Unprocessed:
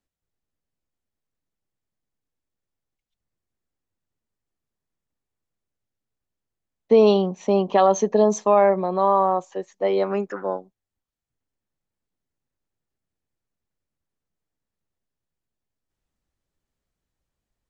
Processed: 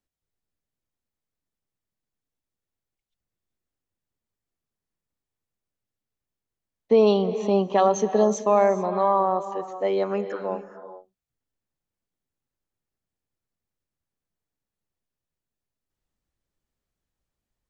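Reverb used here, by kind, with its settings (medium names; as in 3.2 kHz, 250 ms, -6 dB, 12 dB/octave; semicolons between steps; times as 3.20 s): gated-style reverb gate 460 ms rising, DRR 11.5 dB; trim -2.5 dB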